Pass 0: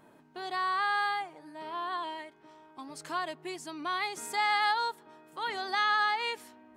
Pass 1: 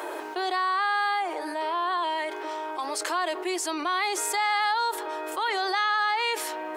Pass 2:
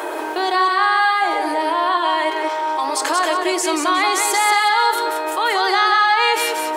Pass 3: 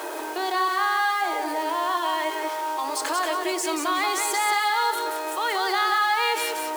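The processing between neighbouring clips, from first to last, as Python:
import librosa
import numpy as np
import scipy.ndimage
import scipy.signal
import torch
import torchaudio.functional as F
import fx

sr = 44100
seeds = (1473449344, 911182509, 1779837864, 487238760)

y1 = scipy.signal.sosfilt(scipy.signal.ellip(4, 1.0, 40, 340.0, 'highpass', fs=sr, output='sos'), x)
y1 = fx.env_flatten(y1, sr, amount_pct=70)
y1 = y1 * librosa.db_to_amplitude(2.0)
y2 = fx.echo_feedback(y1, sr, ms=182, feedback_pct=27, wet_db=-4.5)
y2 = fx.room_shoebox(y2, sr, seeds[0], volume_m3=810.0, walls='furnished', distance_m=0.58)
y2 = y2 * librosa.db_to_amplitude(8.0)
y3 = y2 + 0.5 * 10.0 ** (-22.0 / 20.0) * np.diff(np.sign(y2), prepend=np.sign(y2[:1]))
y3 = fx.high_shelf(y3, sr, hz=12000.0, db=-5.5)
y3 = y3 * librosa.db_to_amplitude(-7.0)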